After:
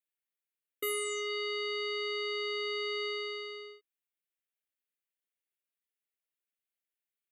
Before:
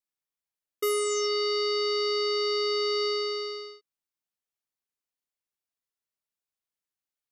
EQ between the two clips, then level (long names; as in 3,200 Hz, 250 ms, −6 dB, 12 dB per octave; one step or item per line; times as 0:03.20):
high-pass filter 340 Hz
dynamic equaliser 470 Hz, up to −6 dB, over −43 dBFS, Q 1.5
phaser with its sweep stopped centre 2,300 Hz, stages 4
0.0 dB